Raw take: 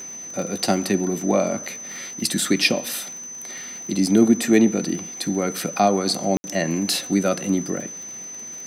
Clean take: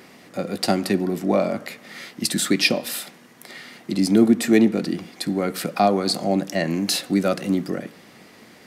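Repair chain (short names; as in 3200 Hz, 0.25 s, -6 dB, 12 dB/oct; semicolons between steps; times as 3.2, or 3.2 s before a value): de-click; notch 6100 Hz, Q 30; room tone fill 6.37–6.44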